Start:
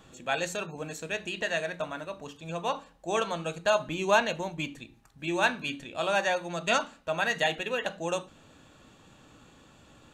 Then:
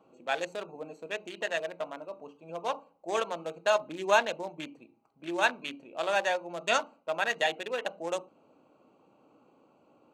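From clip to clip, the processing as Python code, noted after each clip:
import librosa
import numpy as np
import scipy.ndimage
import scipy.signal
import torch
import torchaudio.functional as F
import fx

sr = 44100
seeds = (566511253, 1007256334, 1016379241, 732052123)

y = fx.wiener(x, sr, points=25)
y = scipy.signal.sosfilt(scipy.signal.butter(2, 340.0, 'highpass', fs=sr, output='sos'), y)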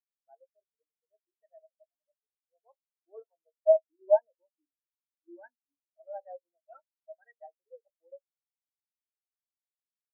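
y = fx.cvsd(x, sr, bps=16000)
y = fx.spectral_expand(y, sr, expansion=4.0)
y = y * librosa.db_to_amplitude(2.0)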